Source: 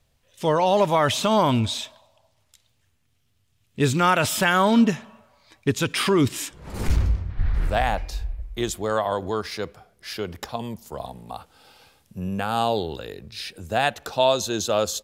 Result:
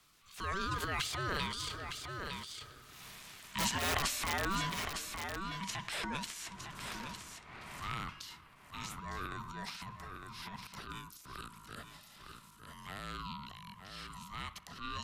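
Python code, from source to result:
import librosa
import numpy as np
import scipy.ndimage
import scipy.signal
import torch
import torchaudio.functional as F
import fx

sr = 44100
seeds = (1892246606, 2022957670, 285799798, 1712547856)

p1 = fx.doppler_pass(x, sr, speed_mps=28, closest_m=4.6, pass_at_s=3.06)
p2 = scipy.signal.sosfilt(scipy.signal.butter(12, 370.0, 'highpass', fs=sr, output='sos'), p1)
p3 = fx.notch(p2, sr, hz=1100.0, q=15.0)
p4 = p3 * np.sin(2.0 * np.pi * 580.0 * np.arange(len(p3)) / sr)
p5 = (np.mod(10.0 ** (30.0 / 20.0) * p4 + 1.0, 2.0) - 1.0) / 10.0 ** (30.0 / 20.0)
p6 = fx.transient(p5, sr, attack_db=-9, sustain_db=11)
p7 = p6 + fx.echo_single(p6, sr, ms=907, db=-13.5, dry=0)
p8 = fx.band_squash(p7, sr, depth_pct=70)
y = F.gain(torch.from_numpy(p8), 13.5).numpy()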